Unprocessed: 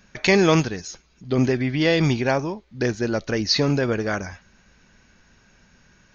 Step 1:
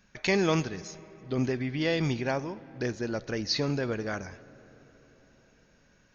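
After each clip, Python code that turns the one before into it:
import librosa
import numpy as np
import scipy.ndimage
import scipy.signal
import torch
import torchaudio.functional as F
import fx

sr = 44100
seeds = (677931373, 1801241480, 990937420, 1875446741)

y = fx.rev_freeverb(x, sr, rt60_s=4.7, hf_ratio=0.45, predelay_ms=5, drr_db=18.0)
y = F.gain(torch.from_numpy(y), -8.5).numpy()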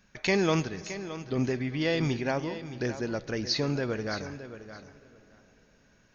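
y = fx.echo_feedback(x, sr, ms=619, feedback_pct=15, wet_db=-12.5)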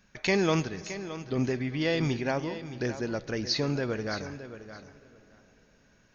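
y = x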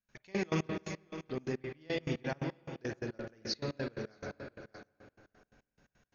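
y = fx.rev_spring(x, sr, rt60_s=2.1, pass_ms=(44, 51), chirp_ms=30, drr_db=2.0)
y = fx.step_gate(y, sr, bpm=174, pattern='.x..x.x.x', floor_db=-24.0, edge_ms=4.5)
y = F.gain(torch.from_numpy(y), -7.5).numpy()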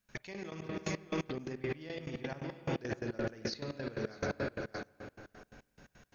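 y = fx.over_compress(x, sr, threshold_db=-42.0, ratio=-1.0)
y = F.gain(torch.from_numpy(y), 5.0).numpy()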